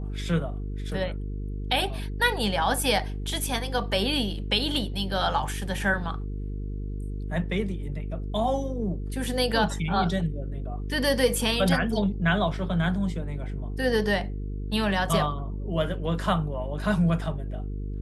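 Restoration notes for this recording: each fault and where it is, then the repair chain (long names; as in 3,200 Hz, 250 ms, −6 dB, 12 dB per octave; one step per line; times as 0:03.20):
mains buzz 50 Hz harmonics 9 −32 dBFS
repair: hum removal 50 Hz, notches 9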